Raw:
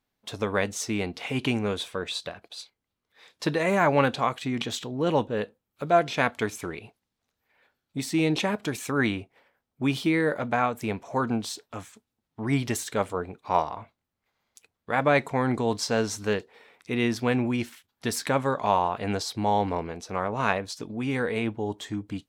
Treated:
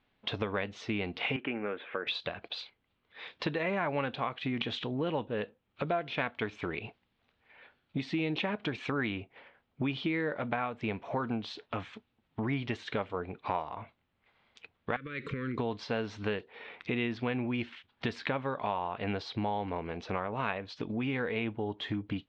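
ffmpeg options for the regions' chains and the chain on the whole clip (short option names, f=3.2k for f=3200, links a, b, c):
-filter_complex "[0:a]asettb=1/sr,asplit=3[a][b][c];[a]atrim=end=1.364[d];[b]atrim=start=1.36:end=2.07,asetpts=PTS-STARTPTS,afade=t=in:d=0.004:c=qsin,afade=t=out:st=0.706:d=0.004:c=qsin,acompressor=mode=upward:threshold=-35dB:ratio=2.5:attack=3.2:release=140:knee=2.83:detection=peak,highpass=380,equalizer=f=420:t=q:w=4:g=-4,equalizer=f=700:t=q:w=4:g=-7,equalizer=f=1k:t=q:w=4:g=-9,lowpass=f=2k:w=0.5412,lowpass=f=2k:w=1.3066[e];[c]atrim=start=2.066[f];[d][e]acrossfade=d=0.004:c1=hsin:c2=qsin[g];[g][f]acrossfade=d=0.004:c1=qsin:c2=hsin,asettb=1/sr,asplit=3[h][i][j];[h]atrim=end=14.964[k];[i]atrim=start=14.96:end=15.58,asetpts=PTS-STARTPTS,afade=t=in:d=0.004:c=qsin,afade=t=out:st=0.616:d=0.004:c=qsin,highshelf=f=8.8k:g=11,acompressor=threshold=-31dB:ratio=20:attack=3.2:release=140:knee=1:detection=peak,asuperstop=centerf=770:order=8:qfactor=1.1[l];[j]atrim=start=15.576[m];[k][l]acrossfade=d=0.004:c1=hsin:c2=qsin[n];[n][m]acrossfade=d=0.004:c1=qsin:c2=hsin,acompressor=threshold=-40dB:ratio=4,lowpass=f=3.6k:w=0.5412,lowpass=f=3.6k:w=1.3066,equalizer=f=2.8k:w=1.3:g=4,volume=7dB"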